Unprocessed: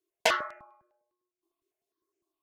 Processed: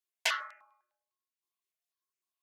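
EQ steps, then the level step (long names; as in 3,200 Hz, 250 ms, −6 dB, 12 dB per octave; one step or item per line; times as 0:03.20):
high-pass filter 1,400 Hz 12 dB per octave
−2.0 dB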